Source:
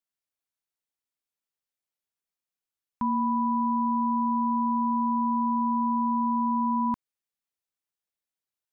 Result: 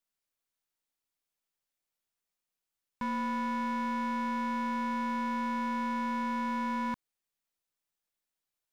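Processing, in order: half-wave gain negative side -3 dB; limiter -25 dBFS, peak gain reduction 5.5 dB; hard clip -33.5 dBFS, distortion -9 dB; gain +3.5 dB

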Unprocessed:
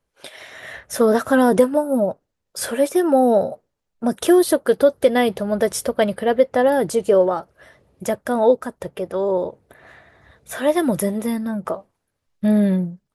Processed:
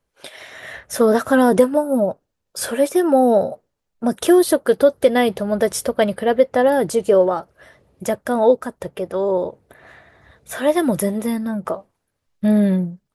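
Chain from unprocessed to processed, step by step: 2.02–2.71 notch 2000 Hz, Q 14; gain +1 dB

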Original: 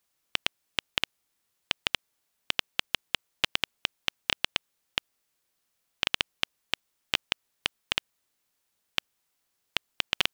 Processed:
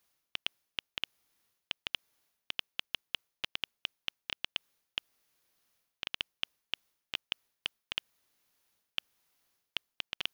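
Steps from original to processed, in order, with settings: reverse; compressor 8:1, threshold -35 dBFS, peak gain reduction 16 dB; reverse; bell 7900 Hz -7.5 dB 0.23 oct; gain +2.5 dB

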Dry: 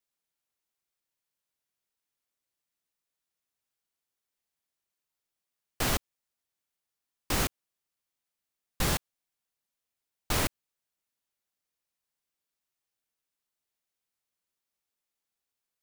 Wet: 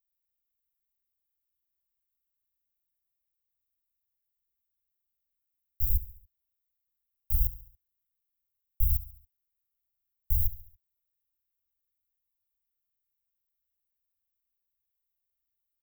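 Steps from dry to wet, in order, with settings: inverse Chebyshev band-stop 210–8100 Hz, stop band 50 dB; on a send: feedback echo 70 ms, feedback 48%, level -16.5 dB; on the sum: gain +8.5 dB

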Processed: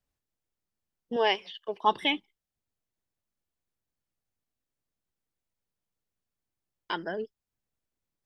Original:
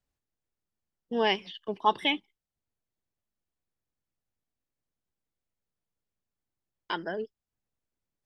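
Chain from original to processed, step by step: 1.16–1.84 resonant low shelf 350 Hz -9.5 dB, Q 1.5

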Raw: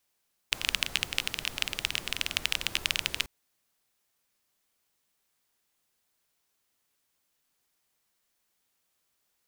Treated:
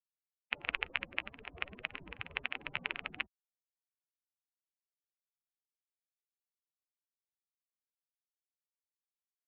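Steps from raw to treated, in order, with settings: per-bin expansion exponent 3; mistuned SSB -190 Hz 200–3000 Hz; high shelf 2200 Hz -9 dB; gain +5 dB

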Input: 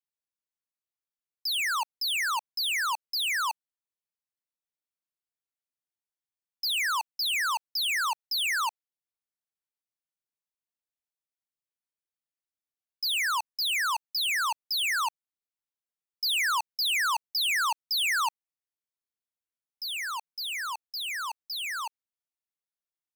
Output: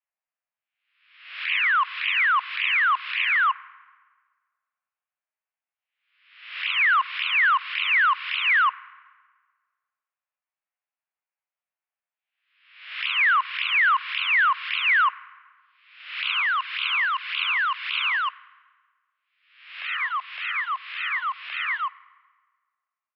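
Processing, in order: spectral swells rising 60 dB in 0.74 s; envelope flanger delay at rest 10.5 ms, full sweep at -19.5 dBFS; on a send at -19 dB: reverb RT60 1.5 s, pre-delay 4 ms; on the sum: mistuned SSB +160 Hz 420–2500 Hz; gain +8 dB

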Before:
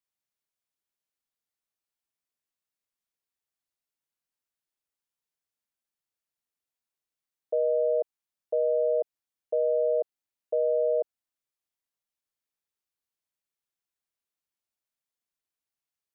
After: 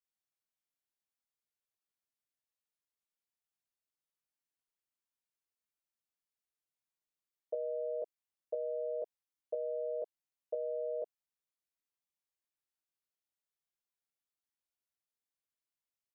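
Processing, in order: doubler 20 ms -3.5 dB; gain -8 dB

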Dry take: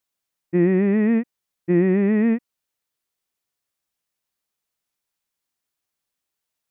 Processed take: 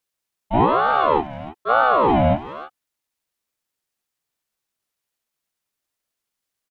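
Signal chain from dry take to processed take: speakerphone echo 0.31 s, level -11 dB; harmoniser -7 st -2 dB, +5 st -1 dB; ring modulator with a swept carrier 710 Hz, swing 45%, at 1.1 Hz

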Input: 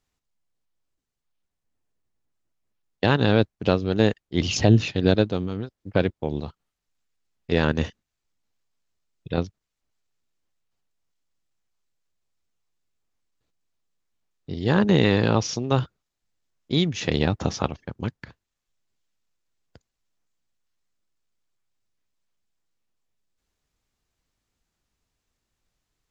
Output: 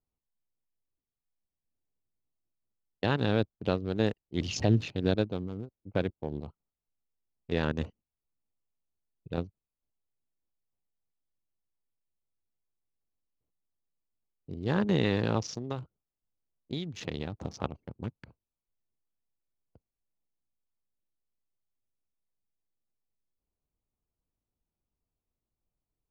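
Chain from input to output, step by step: Wiener smoothing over 25 samples; 15.43–17.63 compressor 6:1, threshold -23 dBFS, peak gain reduction 9 dB; gain -8 dB

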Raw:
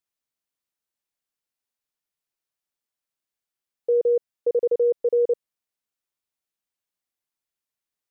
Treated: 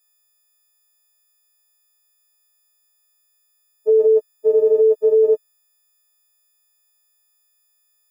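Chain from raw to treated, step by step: frequency quantiser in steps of 6 st; gain +7 dB

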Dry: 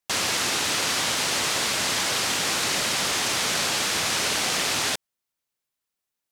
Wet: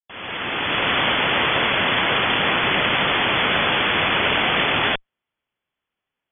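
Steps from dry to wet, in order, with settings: opening faded in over 0.96 s; added harmonics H 6 -19 dB, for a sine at -10.5 dBFS; brick-wall FIR low-pass 3500 Hz; gain +8 dB

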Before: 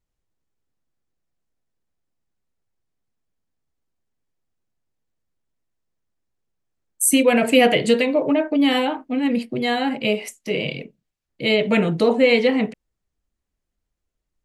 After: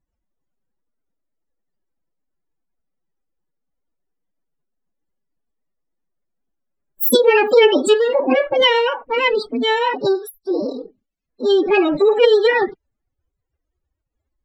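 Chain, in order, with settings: loudest bins only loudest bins 64; formant-preserving pitch shift +10.5 st; gain +4 dB

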